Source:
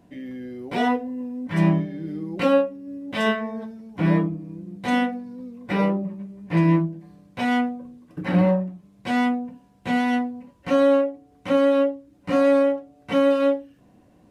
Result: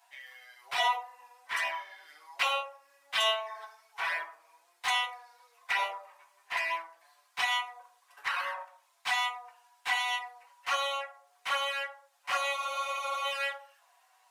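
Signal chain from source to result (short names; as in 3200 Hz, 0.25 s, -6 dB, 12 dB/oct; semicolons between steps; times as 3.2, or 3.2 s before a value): steep high-pass 810 Hz 36 dB/oct; high shelf 3200 Hz +6.5 dB; envelope flanger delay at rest 8.6 ms, full sweep at -26 dBFS; on a send at -3 dB: reverb RT60 0.50 s, pre-delay 3 ms; on the sum: spectral freeze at 12.59, 0.65 s; gain +2.5 dB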